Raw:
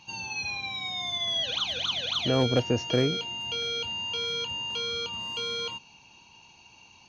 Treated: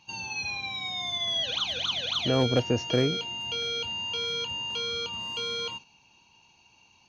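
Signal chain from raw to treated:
noise gate −44 dBFS, range −6 dB

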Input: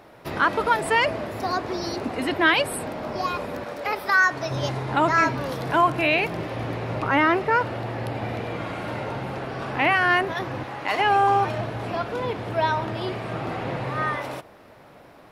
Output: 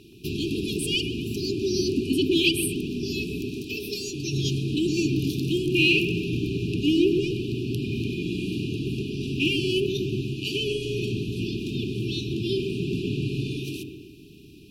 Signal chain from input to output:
in parallel at −7.5 dB: soft clipping −24 dBFS, distortion −7 dB
on the sum: linear-phase brick-wall band-stop 410–2,300 Hz
delay with a low-pass on its return 132 ms, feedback 48%, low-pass 1,700 Hz, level −3.5 dB
wrong playback speed 24 fps film run at 25 fps
level +1.5 dB

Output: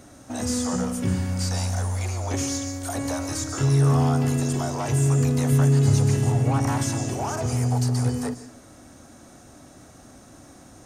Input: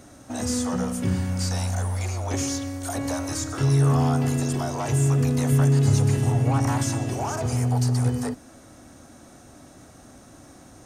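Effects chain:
on a send: flat-topped bell 7,200 Hz +13.5 dB + convolution reverb RT60 0.50 s, pre-delay 130 ms, DRR 18 dB

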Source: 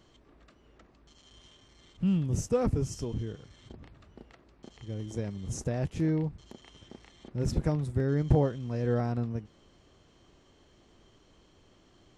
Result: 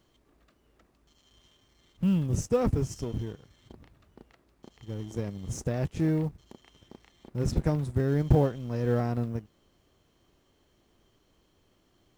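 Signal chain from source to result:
mu-law and A-law mismatch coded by A
level +2.5 dB

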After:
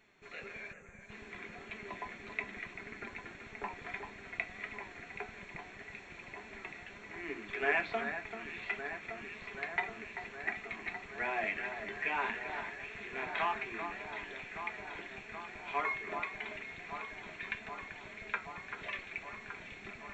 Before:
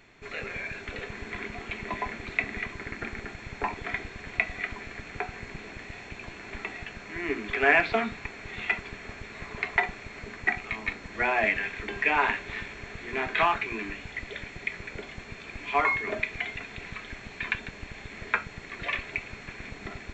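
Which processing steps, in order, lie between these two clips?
gain on a spectral selection 0:00.72–0:01.10, 220–5,900 Hz −26 dB
on a send: delay that swaps between a low-pass and a high-pass 388 ms, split 2,200 Hz, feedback 88%, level −8 dB
on the sum: flanger 1.7 Hz, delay 4.5 ms, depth 1.4 ms, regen +68%
low-shelf EQ 93 Hz −9 dB
notch filter 4,800 Hz, Q 11
level −6 dB

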